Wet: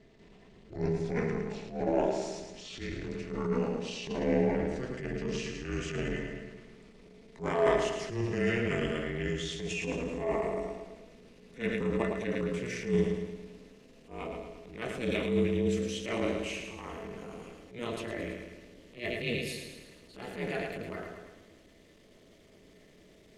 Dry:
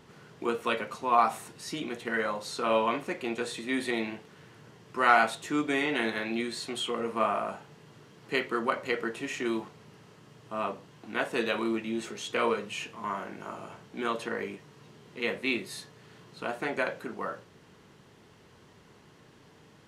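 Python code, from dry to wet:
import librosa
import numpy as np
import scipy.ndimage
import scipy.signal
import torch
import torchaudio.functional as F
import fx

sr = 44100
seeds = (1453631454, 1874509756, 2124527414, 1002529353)

p1 = fx.speed_glide(x, sr, from_pct=59, to_pct=111)
p2 = fx.band_shelf(p1, sr, hz=990.0, db=-9.0, octaves=1.7)
p3 = fx.small_body(p2, sr, hz=(310.0, 540.0, 1900.0), ring_ms=90, db=11)
p4 = p3 + fx.echo_feedback(p3, sr, ms=109, feedback_pct=55, wet_db=-6.5, dry=0)
p5 = fx.transient(p4, sr, attack_db=-12, sustain_db=2)
p6 = fx.hum_notches(p5, sr, base_hz=60, count=4)
y = p6 * np.sin(2.0 * np.pi * 120.0 * np.arange(len(p6)) / sr)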